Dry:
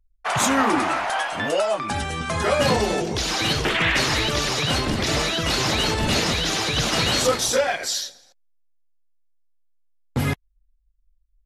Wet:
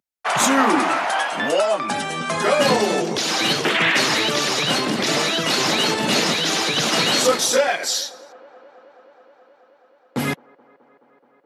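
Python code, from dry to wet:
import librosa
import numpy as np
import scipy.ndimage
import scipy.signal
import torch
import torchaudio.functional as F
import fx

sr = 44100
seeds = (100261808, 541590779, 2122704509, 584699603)

y = scipy.signal.sosfilt(scipy.signal.butter(4, 170.0, 'highpass', fs=sr, output='sos'), x)
y = fx.echo_wet_bandpass(y, sr, ms=213, feedback_pct=83, hz=710.0, wet_db=-23.5)
y = y * 10.0 ** (3.0 / 20.0)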